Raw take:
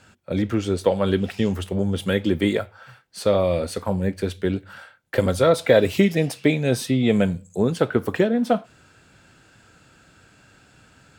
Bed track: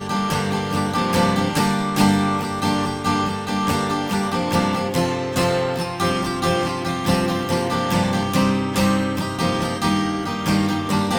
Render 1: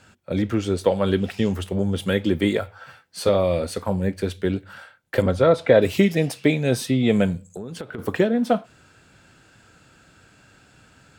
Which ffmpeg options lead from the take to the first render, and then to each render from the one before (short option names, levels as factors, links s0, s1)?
-filter_complex "[0:a]asettb=1/sr,asplit=3[s0][s1][s2];[s0]atrim=end=2.614[s3];[s1]atrim=start=2.61:end=3.29,asetpts=PTS-STARTPTS,afade=t=in:d=0.004:c=qsin,afade=t=out:st=0.676:d=0.004:c=qsin,asplit=2[s4][s5];[s5]adelay=12,volume=0.794[s6];[s4][s6]amix=inputs=2:normalize=0,atrim=end_sample=29988[s7];[s2]atrim=start=3.286[s8];[s3][s7]acrossfade=d=0.004:c1=hsin:c2=qsin[s9];[s9][s8]acrossfade=d=0.004:c1=qsin:c2=hsin,asettb=1/sr,asplit=3[s10][s11][s12];[s10]atrim=end=5.224[s13];[s11]atrim=start=5.22:end=5.82,asetpts=PTS-STARTPTS,afade=t=in:d=0.004:c=qsin,afade=t=out:st=0.596:d=0.004:c=qsin,aemphasis=mode=reproduction:type=75fm[s14];[s12]atrim=start=5.816[s15];[s13][s14]acrossfade=d=0.004:c1=hsin:c2=qsin[s16];[s16][s15]acrossfade=d=0.004:c1=qsin:c2=hsin,asplit=3[s17][s18][s19];[s17]afade=t=out:st=7.44:d=0.02[s20];[s18]acompressor=threshold=0.0355:ratio=12:attack=3.2:release=140:knee=1:detection=peak,afade=t=in:st=7.44:d=0.02,afade=t=out:st=7.98:d=0.02[s21];[s19]afade=t=in:st=7.98:d=0.02[s22];[s20][s21][s22]amix=inputs=3:normalize=0"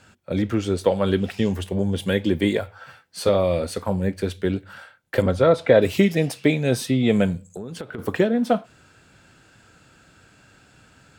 -filter_complex "[0:a]asettb=1/sr,asplit=3[s0][s1][s2];[s0]atrim=end=1.444[s3];[s1]atrim=start=1.44:end=2.63,asetpts=PTS-STARTPTS,afade=t=in:d=0.004:c=qsin,afade=t=out:st=1.186:d=0.004:c=qsin,asuperstop=centerf=1300:order=4:qfactor=7.4[s4];[s2]atrim=start=2.626[s5];[s3][s4]acrossfade=d=0.004:c1=hsin:c2=qsin[s6];[s6][s5]acrossfade=d=0.004:c1=qsin:c2=hsin"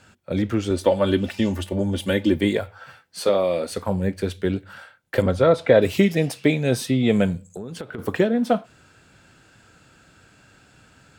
-filter_complex "[0:a]asettb=1/sr,asplit=3[s0][s1][s2];[s0]atrim=end=0.704[s3];[s1]atrim=start=0.7:end=2.36,asetpts=PTS-STARTPTS,afade=t=in:d=0.004:c=qsin,afade=t=out:st=1.656:d=0.004:c=qsin,aecho=1:1:3.4:0.65,atrim=end_sample=73206[s4];[s2]atrim=start=2.356[s5];[s3][s4]acrossfade=d=0.004:c1=hsin:c2=qsin[s6];[s6][s5]acrossfade=d=0.004:c1=qsin:c2=hsin,asettb=1/sr,asplit=3[s7][s8][s9];[s7]atrim=end=3.224[s10];[s8]atrim=start=3.22:end=3.72,asetpts=PTS-STARTPTS,afade=t=in:d=0.004:c=qsin,afade=t=out:st=0.496:d=0.004:c=qsin,highpass=230[s11];[s9]atrim=start=3.716[s12];[s10][s11]acrossfade=d=0.004:c1=hsin:c2=qsin[s13];[s13][s12]acrossfade=d=0.004:c1=qsin:c2=hsin"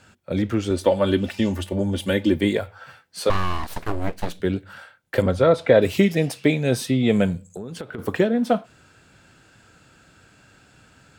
-filter_complex "[0:a]asettb=1/sr,asplit=3[s0][s1][s2];[s0]atrim=end=3.304[s3];[s1]atrim=start=3.3:end=4.4,asetpts=PTS-STARTPTS,afade=t=in:d=0.004:c=qsin,afade=t=out:st=1.096:d=0.004:c=qsin,aeval=exprs='abs(val(0))':c=same[s4];[s2]atrim=start=4.396[s5];[s3][s4]acrossfade=d=0.004:c1=hsin:c2=qsin[s6];[s6][s5]acrossfade=d=0.004:c1=qsin:c2=hsin"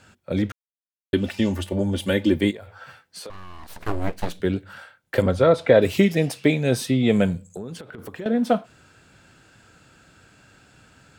-filter_complex "[0:a]asplit=3[s0][s1][s2];[s0]afade=t=out:st=2.5:d=0.02[s3];[s1]acompressor=threshold=0.02:ratio=12:attack=3.2:release=140:knee=1:detection=peak,afade=t=in:st=2.5:d=0.02,afade=t=out:st=3.8:d=0.02[s4];[s2]afade=t=in:st=3.8:d=0.02[s5];[s3][s4][s5]amix=inputs=3:normalize=0,asettb=1/sr,asplit=3[s6][s7][s8];[s6]atrim=end=7.754[s9];[s7]atrim=start=7.75:end=8.26,asetpts=PTS-STARTPTS,afade=t=in:d=0.004:c=qsin,afade=t=out:st=0.506:d=0.004:c=qsin,acompressor=threshold=0.0158:ratio=3:attack=3.2:release=140:knee=1:detection=peak[s10];[s8]atrim=start=8.256[s11];[s9][s10]acrossfade=d=0.004:c1=hsin:c2=qsin[s12];[s12][s11]acrossfade=d=0.004:c1=qsin:c2=hsin,asplit=3[s13][s14][s15];[s13]atrim=end=0.52,asetpts=PTS-STARTPTS,afade=t=out:st=0.516:d=0.004:c=hsin[s16];[s14]atrim=start=0.52:end=1.13,asetpts=PTS-STARTPTS,volume=0[s17];[s15]atrim=start=1.13,asetpts=PTS-STARTPTS,afade=t=in:d=0.004:c=hsin[s18];[s16][s17][s18]concat=n=3:v=0:a=1"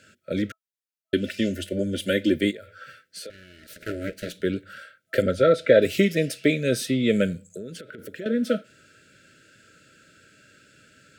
-af "highpass=f=230:p=1,afftfilt=real='re*(1-between(b*sr/4096,650,1300))':imag='im*(1-between(b*sr/4096,650,1300))':win_size=4096:overlap=0.75"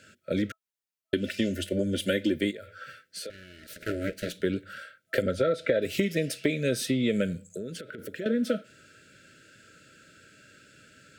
-af "acompressor=threshold=0.0794:ratio=6"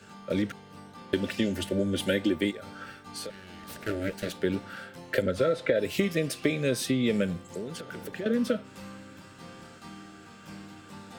-filter_complex "[1:a]volume=0.0501[s0];[0:a][s0]amix=inputs=2:normalize=0"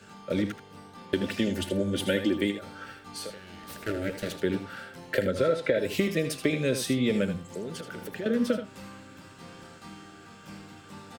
-af "aecho=1:1:79:0.316"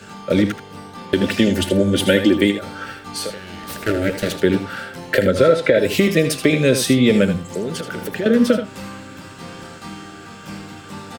-af "volume=3.76,alimiter=limit=0.794:level=0:latency=1"